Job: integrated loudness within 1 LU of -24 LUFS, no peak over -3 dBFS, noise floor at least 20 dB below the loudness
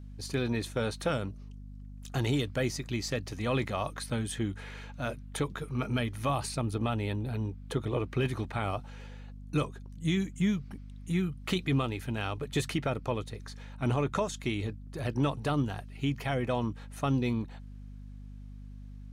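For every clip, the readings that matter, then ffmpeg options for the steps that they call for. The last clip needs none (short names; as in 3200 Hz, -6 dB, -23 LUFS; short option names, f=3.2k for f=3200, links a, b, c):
hum 50 Hz; harmonics up to 250 Hz; hum level -42 dBFS; loudness -32.5 LUFS; peak -17.5 dBFS; loudness target -24.0 LUFS
-> -af "bandreject=f=50:t=h:w=6,bandreject=f=100:t=h:w=6,bandreject=f=150:t=h:w=6,bandreject=f=200:t=h:w=6,bandreject=f=250:t=h:w=6"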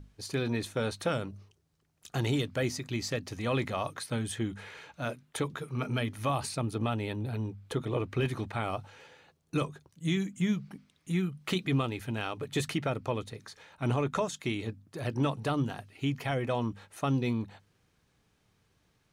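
hum none; loudness -33.0 LUFS; peak -17.5 dBFS; loudness target -24.0 LUFS
-> -af "volume=9dB"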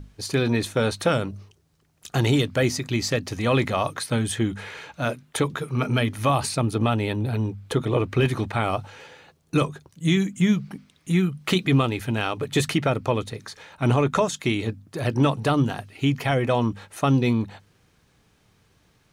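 loudness -24.0 LUFS; peak -8.5 dBFS; noise floor -63 dBFS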